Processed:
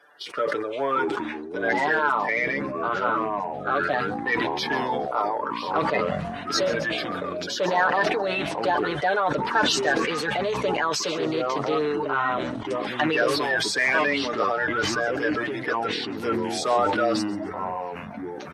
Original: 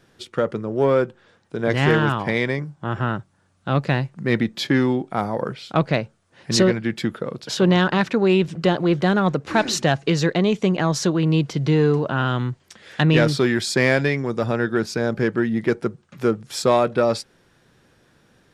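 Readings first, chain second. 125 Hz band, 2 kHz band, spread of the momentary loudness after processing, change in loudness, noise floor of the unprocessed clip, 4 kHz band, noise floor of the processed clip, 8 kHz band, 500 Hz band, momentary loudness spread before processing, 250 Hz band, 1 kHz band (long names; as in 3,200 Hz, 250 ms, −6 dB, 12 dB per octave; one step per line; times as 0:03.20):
−16.0 dB, +1.5 dB, 8 LU, −3.5 dB, −61 dBFS, −1.0 dB, −35 dBFS, −2.5 dB, −4.0 dB, 9 LU, −8.5 dB, +3.0 dB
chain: spectral magnitudes quantised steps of 30 dB
high-pass filter 800 Hz 12 dB per octave
high-shelf EQ 2,200 Hz −10.5 dB
notch filter 7,200 Hz, Q 9.2
comb filter 6.8 ms
in parallel at +1.5 dB: downward compressor, threshold −37 dBFS, peak gain reduction 18 dB
on the sum: soft clipping −8.5 dBFS, distortion −28 dB
delay with a high-pass on its return 137 ms, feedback 34%, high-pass 5,400 Hz, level −15 dB
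delay with pitch and tempo change per echo 434 ms, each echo −6 semitones, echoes 3, each echo −6 dB
level that may fall only so fast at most 29 dB per second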